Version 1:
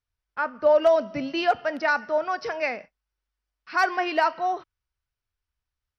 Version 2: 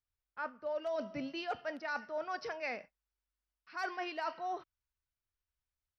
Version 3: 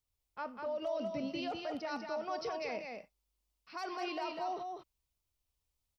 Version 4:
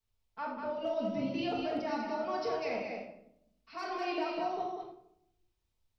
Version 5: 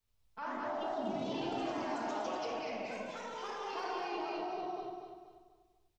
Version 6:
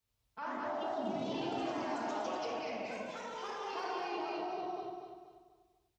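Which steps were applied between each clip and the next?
dynamic EQ 4600 Hz, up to +4 dB, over -38 dBFS, Q 0.75; reverse; compressor 6:1, threshold -27 dBFS, peak gain reduction 12.5 dB; reverse; gain -8 dB
bell 1600 Hz -12 dB 0.77 oct; limiter -37.5 dBFS, peak gain reduction 9.5 dB; on a send: echo 0.197 s -4.5 dB; on the sum: gain +6 dB
reverb RT60 0.75 s, pre-delay 4 ms, DRR -9 dB; gain -6 dB
limiter -35 dBFS, peak gain reduction 11.5 dB; echoes that change speed 82 ms, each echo +2 st, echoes 3; on a send: feedback echo 0.242 s, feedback 37%, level -7 dB; on the sum: gain +1 dB
HPF 50 Hz

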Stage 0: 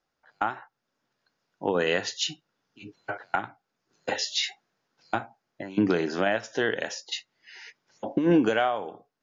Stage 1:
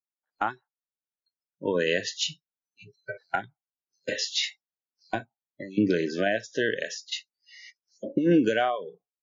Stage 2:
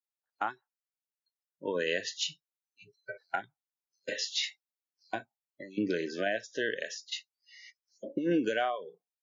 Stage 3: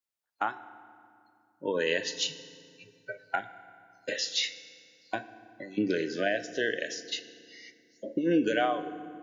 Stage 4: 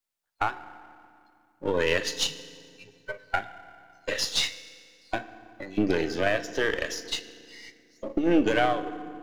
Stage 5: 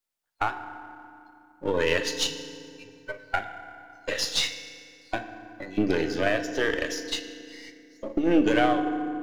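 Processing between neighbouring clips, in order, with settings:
spectral noise reduction 30 dB
low shelf 180 Hz -12 dB; gain -4.5 dB
FDN reverb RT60 2.3 s, low-frequency decay 1.5×, high-frequency decay 0.7×, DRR 12 dB; gain +2.5 dB
half-wave gain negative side -7 dB; gain +6 dB
FDN reverb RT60 1.9 s, low-frequency decay 1×, high-frequency decay 0.45×, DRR 15.5 dB

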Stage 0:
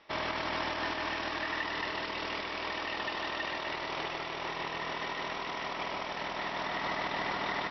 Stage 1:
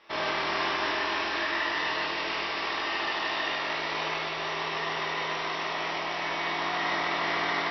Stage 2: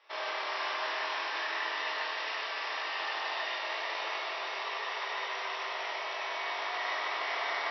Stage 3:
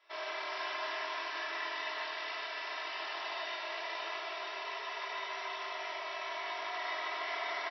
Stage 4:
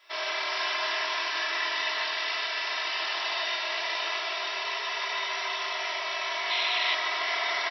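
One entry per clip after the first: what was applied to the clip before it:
low shelf 380 Hz -7.5 dB; reverb RT60 1.1 s, pre-delay 18 ms, DRR -4 dB; gain +1.5 dB
HPF 460 Hz 24 dB/oct; echo with dull and thin repeats by turns 0.204 s, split 1100 Hz, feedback 86%, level -7 dB; gain -6 dB
comb 3 ms, depth 85%; gain -6.5 dB
high shelf 2200 Hz +10.5 dB; painted sound noise, 6.5–6.95, 2000–4200 Hz -34 dBFS; gain +4.5 dB

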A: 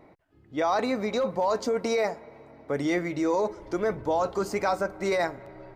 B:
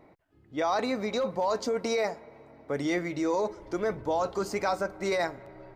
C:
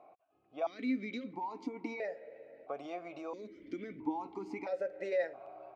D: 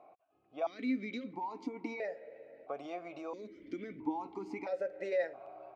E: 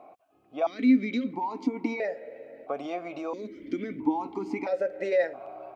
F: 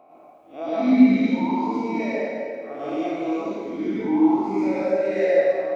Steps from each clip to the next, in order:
dynamic EQ 4600 Hz, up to +3 dB, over -46 dBFS, Q 0.83; gain -2.5 dB
compressor 4:1, threshold -32 dBFS, peak gain reduction 8 dB; vowel sequencer 1.5 Hz; gain +8 dB
nothing audible
small resonant body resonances 250/3200 Hz, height 6 dB; gain +8 dB
time blur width 0.105 s; plate-style reverb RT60 1.7 s, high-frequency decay 0.9×, pre-delay 85 ms, DRR -8.5 dB

